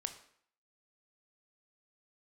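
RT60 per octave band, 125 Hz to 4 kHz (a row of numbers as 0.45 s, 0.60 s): 0.55 s, 0.60 s, 0.60 s, 0.60 s, 0.60 s, 0.55 s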